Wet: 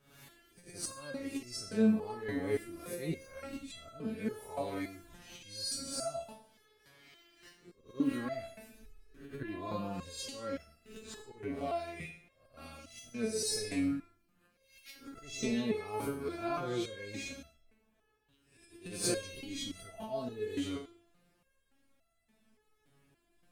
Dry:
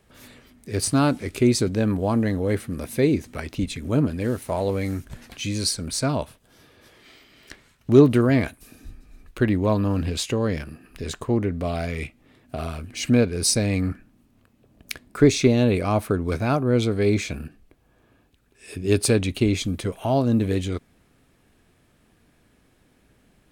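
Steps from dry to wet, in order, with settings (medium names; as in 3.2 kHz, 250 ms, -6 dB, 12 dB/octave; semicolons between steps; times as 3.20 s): reverse spectral sustain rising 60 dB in 0.52 s; slow attack 166 ms; Schroeder reverb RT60 0.6 s, DRR 7.5 dB; resonator arpeggio 3.5 Hz 140–670 Hz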